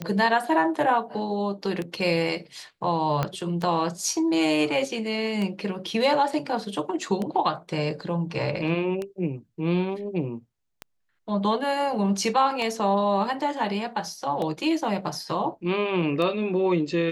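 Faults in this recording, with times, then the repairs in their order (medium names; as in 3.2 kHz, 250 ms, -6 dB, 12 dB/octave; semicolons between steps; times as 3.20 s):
tick 33 1/3 rpm -17 dBFS
3.23 s: pop -12 dBFS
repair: de-click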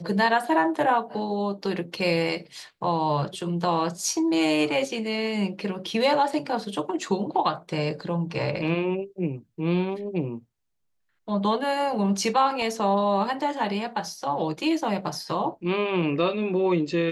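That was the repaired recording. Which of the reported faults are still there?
3.23 s: pop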